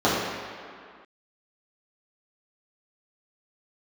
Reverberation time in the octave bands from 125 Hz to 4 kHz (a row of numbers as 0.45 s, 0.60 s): 1.6 s, 2.0 s, 2.0 s, 2.3 s, no reading, 1.6 s